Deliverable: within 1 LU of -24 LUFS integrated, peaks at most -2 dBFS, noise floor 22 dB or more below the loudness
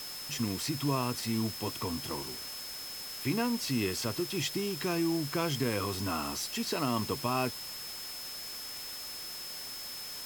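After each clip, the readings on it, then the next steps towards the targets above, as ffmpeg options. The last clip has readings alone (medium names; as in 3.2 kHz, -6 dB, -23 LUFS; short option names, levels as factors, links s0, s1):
steady tone 5.2 kHz; tone level -42 dBFS; noise floor -42 dBFS; noise floor target -56 dBFS; loudness -33.5 LUFS; peak level -16.5 dBFS; loudness target -24.0 LUFS
-> -af "bandreject=f=5200:w=30"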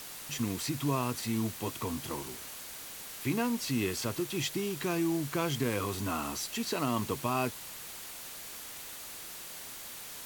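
steady tone not found; noise floor -45 dBFS; noise floor target -56 dBFS
-> -af "afftdn=nr=11:nf=-45"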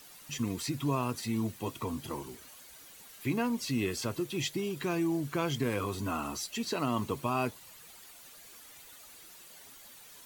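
noise floor -53 dBFS; noise floor target -56 dBFS
-> -af "afftdn=nr=6:nf=-53"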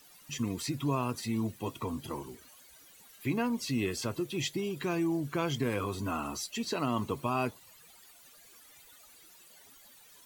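noise floor -57 dBFS; loudness -33.5 LUFS; peak level -17.5 dBFS; loudness target -24.0 LUFS
-> -af "volume=2.99"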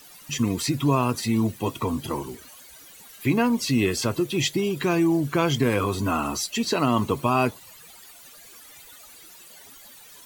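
loudness -24.0 LUFS; peak level -8.0 dBFS; noise floor -48 dBFS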